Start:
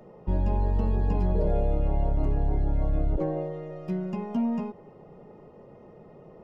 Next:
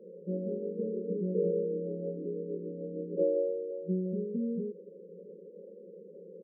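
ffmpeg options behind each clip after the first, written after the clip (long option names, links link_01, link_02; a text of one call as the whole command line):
ffmpeg -i in.wav -af "afftfilt=real='re*between(b*sr/4096,170,560)':imag='im*between(b*sr/4096,170,560)':win_size=4096:overlap=0.75,aecho=1:1:1.9:0.69" out.wav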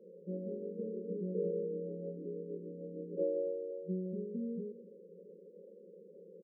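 ffmpeg -i in.wav -af "aecho=1:1:259:0.133,volume=-6dB" out.wav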